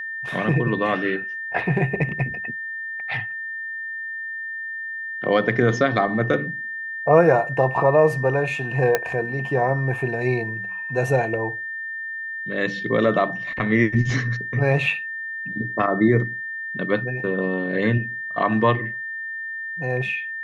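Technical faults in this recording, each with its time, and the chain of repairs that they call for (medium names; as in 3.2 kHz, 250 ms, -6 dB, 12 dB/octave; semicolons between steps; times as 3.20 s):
whine 1.8 kHz -28 dBFS
8.95 s: pop -5 dBFS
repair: de-click; band-stop 1.8 kHz, Q 30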